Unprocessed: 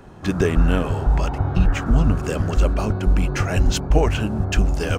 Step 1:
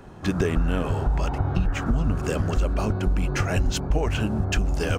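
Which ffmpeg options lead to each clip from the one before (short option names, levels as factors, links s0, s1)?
-af "acompressor=threshold=0.141:ratio=6,volume=0.891"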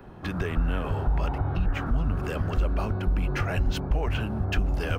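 -filter_complex "[0:a]equalizer=f=7100:t=o:w=0.99:g=-13.5,acrossover=split=100|710|1800[s0][s1][s2][s3];[s1]alimiter=level_in=1.12:limit=0.0631:level=0:latency=1,volume=0.891[s4];[s0][s4][s2][s3]amix=inputs=4:normalize=0,volume=0.841"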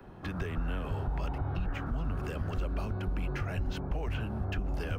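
-filter_complex "[0:a]acrossover=split=140|330|2500[s0][s1][s2][s3];[s0]acompressor=threshold=0.0501:ratio=4[s4];[s1]acompressor=threshold=0.0141:ratio=4[s5];[s2]acompressor=threshold=0.0158:ratio=4[s6];[s3]acompressor=threshold=0.00501:ratio=4[s7];[s4][s5][s6][s7]amix=inputs=4:normalize=0,volume=0.631"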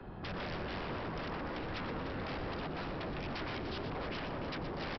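-af "aresample=11025,aeval=exprs='0.0126*(abs(mod(val(0)/0.0126+3,4)-2)-1)':c=same,aresample=44100,aecho=1:1:93|121|297:0.126|0.335|0.335,volume=1.33"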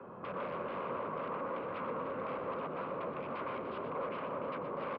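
-af "highpass=220,equalizer=f=320:t=q:w=4:g=-6,equalizer=f=530:t=q:w=4:g=8,equalizer=f=770:t=q:w=4:g=-6,equalizer=f=1100:t=q:w=4:g=9,equalizer=f=1800:t=q:w=4:g=-10,lowpass=f=2300:w=0.5412,lowpass=f=2300:w=1.3066,volume=1.12"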